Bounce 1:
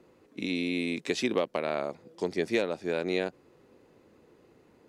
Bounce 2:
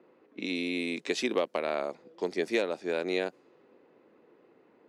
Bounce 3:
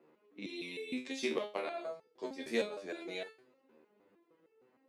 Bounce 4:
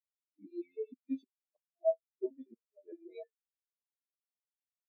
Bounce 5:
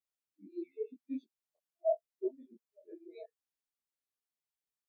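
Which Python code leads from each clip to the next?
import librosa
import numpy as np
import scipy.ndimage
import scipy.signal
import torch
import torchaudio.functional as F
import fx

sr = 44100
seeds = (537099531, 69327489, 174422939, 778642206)

y1 = fx.env_lowpass(x, sr, base_hz=2500.0, full_db=-26.5)
y1 = scipy.signal.sosfilt(scipy.signal.butter(2, 250.0, 'highpass', fs=sr, output='sos'), y1)
y2 = fx.high_shelf(y1, sr, hz=7100.0, db=5.0)
y2 = fx.resonator_held(y2, sr, hz=6.5, low_hz=77.0, high_hz=440.0)
y2 = y2 * librosa.db_to_amplitude(3.5)
y3 = fx.gate_flip(y2, sr, shuts_db=-28.0, range_db=-29)
y3 = fx.spectral_expand(y3, sr, expansion=4.0)
y3 = y3 * librosa.db_to_amplitude(5.0)
y4 = fx.detune_double(y3, sr, cents=59)
y4 = y4 * librosa.db_to_amplitude(3.0)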